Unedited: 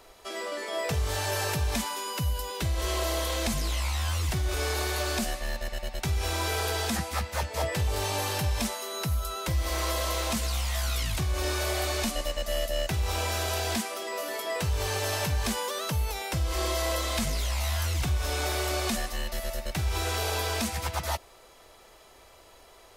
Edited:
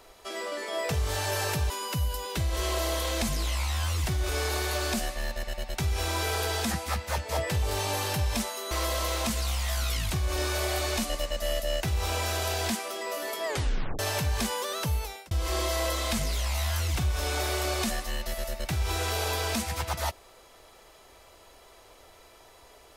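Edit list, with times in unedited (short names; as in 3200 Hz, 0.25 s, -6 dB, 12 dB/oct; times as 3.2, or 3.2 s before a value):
1.7–1.95 cut
8.96–9.77 cut
14.52 tape stop 0.53 s
16.01–16.37 fade out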